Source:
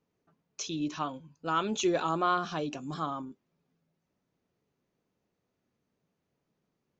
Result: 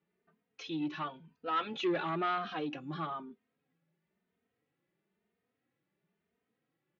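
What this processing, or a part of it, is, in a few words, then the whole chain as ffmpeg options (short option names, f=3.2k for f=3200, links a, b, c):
barber-pole flanger into a guitar amplifier: -filter_complex "[0:a]asplit=2[a][b];[b]adelay=3,afreqshift=1[c];[a][c]amix=inputs=2:normalize=1,asoftclip=type=tanh:threshold=-27dB,highpass=96,equalizer=f=98:t=q:w=4:g=-9,equalizer=f=140:t=q:w=4:g=-4,equalizer=f=270:t=q:w=4:g=-4,equalizer=f=590:t=q:w=4:g=-5,equalizer=f=1k:t=q:w=4:g=-5,equalizer=f=1.9k:t=q:w=4:g=5,lowpass=f=3.6k:w=0.5412,lowpass=f=3.6k:w=1.3066,volume=2.5dB"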